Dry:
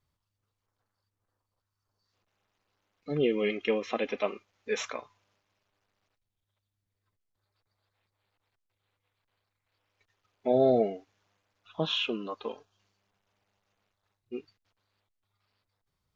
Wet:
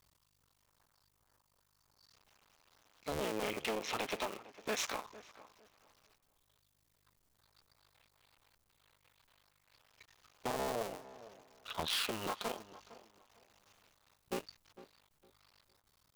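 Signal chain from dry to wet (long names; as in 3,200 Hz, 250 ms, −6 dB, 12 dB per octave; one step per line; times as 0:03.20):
sub-harmonics by changed cycles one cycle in 2, muted
parametric band 990 Hz +4.5 dB 1.4 octaves
downward compressor 10 to 1, threshold −39 dBFS, peak gain reduction 20 dB
high-shelf EQ 3,000 Hz +12 dB
gain into a clipping stage and back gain 36 dB
on a send: tape delay 456 ms, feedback 28%, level −14 dB, low-pass 1,600 Hz
on the sum: level +6.5 dB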